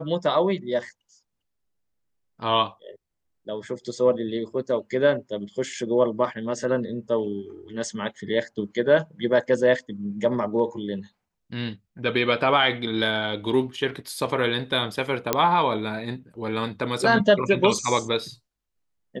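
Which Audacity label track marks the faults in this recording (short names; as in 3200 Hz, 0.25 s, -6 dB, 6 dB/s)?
15.330000	15.330000	pop -4 dBFS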